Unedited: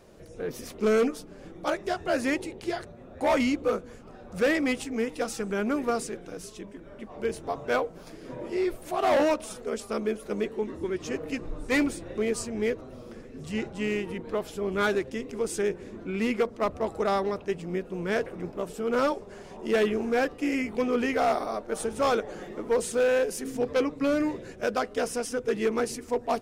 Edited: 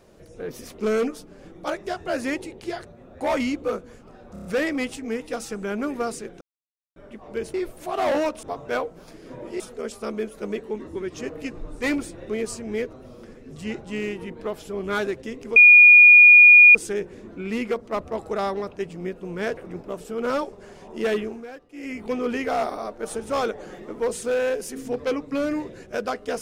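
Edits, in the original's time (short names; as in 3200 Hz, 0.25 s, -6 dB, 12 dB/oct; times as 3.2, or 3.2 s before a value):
4.33 stutter 0.03 s, 5 plays
6.29–6.84 mute
8.59–9.48 move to 7.42
15.44 add tone 2440 Hz -6.5 dBFS 1.19 s
19.85–20.74 dip -15 dB, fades 0.31 s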